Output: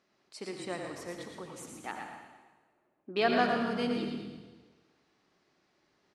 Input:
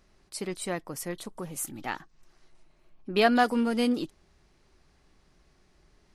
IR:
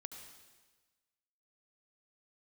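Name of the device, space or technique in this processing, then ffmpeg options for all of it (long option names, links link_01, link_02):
supermarket ceiling speaker: -filter_complex "[0:a]asettb=1/sr,asplit=3[link_01][link_02][link_03];[link_01]atrim=end=1.914[link_04];[link_02]atrim=start=1.91:end=3.16,asetpts=PTS-STARTPTS,afade=type=in:duration=0.004:curve=qsin,afade=type=out:start_time=1.246:duration=0.004:curve=qsin,lowpass=1200[link_05];[link_03]atrim=start=3.156[link_06];[link_04][link_05]acrossfade=duration=0.004:curve1=hsin:curve2=qsin[link_07];[link_07][link_06]acrossfade=duration=0.004:curve1=qsin:curve2=hsin,highpass=240,lowpass=5700[link_08];[1:a]atrim=start_sample=2205[link_09];[link_08][link_09]afir=irnorm=-1:irlink=0,asplit=5[link_10][link_11][link_12][link_13][link_14];[link_11]adelay=114,afreqshift=-41,volume=-6.5dB[link_15];[link_12]adelay=228,afreqshift=-82,volume=-16.1dB[link_16];[link_13]adelay=342,afreqshift=-123,volume=-25.8dB[link_17];[link_14]adelay=456,afreqshift=-164,volume=-35.4dB[link_18];[link_10][link_15][link_16][link_17][link_18]amix=inputs=5:normalize=0"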